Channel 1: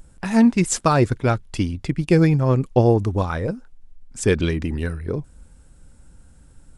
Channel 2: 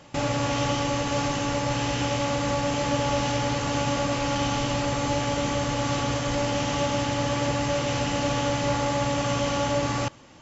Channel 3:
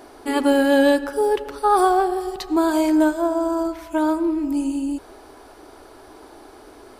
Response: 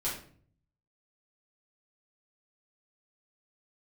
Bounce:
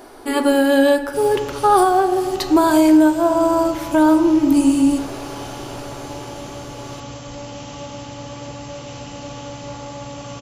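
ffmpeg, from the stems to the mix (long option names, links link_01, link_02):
-filter_complex "[1:a]equalizer=frequency=1800:width_type=o:width=0.73:gain=-5.5,adelay=1000,volume=-7dB[link_01];[2:a]dynaudnorm=framelen=290:gausssize=11:maxgain=11.5dB,volume=1dB,asplit=2[link_02][link_03];[link_03]volume=-12.5dB[link_04];[3:a]atrim=start_sample=2205[link_05];[link_04][link_05]afir=irnorm=-1:irlink=0[link_06];[link_01][link_02][link_06]amix=inputs=3:normalize=0,highshelf=frequency=9400:gain=4,alimiter=limit=-5.5dB:level=0:latency=1:release=499"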